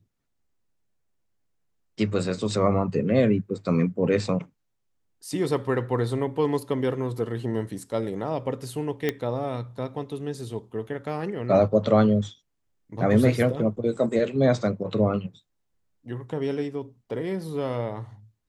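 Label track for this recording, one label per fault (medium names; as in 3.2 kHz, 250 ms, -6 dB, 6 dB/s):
9.090000	9.090000	pop -11 dBFS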